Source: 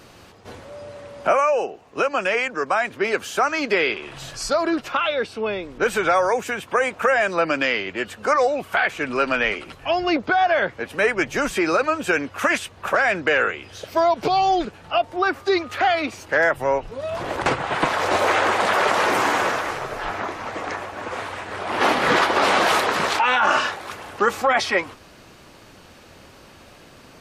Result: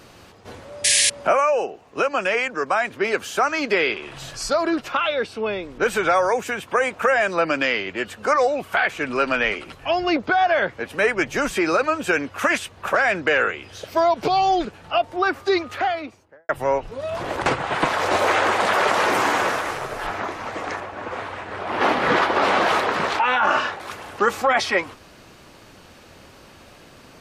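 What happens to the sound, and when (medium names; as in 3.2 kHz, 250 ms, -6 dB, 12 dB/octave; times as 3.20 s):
0.84–1.10 s: painted sound noise 1.6–11 kHz -17 dBFS
15.54–16.49 s: studio fade out
19.48–20.07 s: CVSD coder 64 kbps
20.80–23.80 s: low-pass 2.9 kHz 6 dB/octave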